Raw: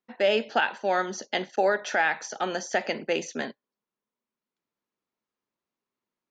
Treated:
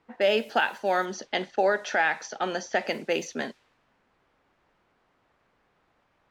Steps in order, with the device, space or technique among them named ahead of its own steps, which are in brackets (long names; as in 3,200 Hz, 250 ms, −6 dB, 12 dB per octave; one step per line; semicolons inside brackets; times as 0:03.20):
cassette deck with a dynamic noise filter (white noise bed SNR 28 dB; low-pass that shuts in the quiet parts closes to 1,300 Hz, open at −24.5 dBFS)
0:01.05–0:02.88: low-pass filter 6,700 Hz 12 dB per octave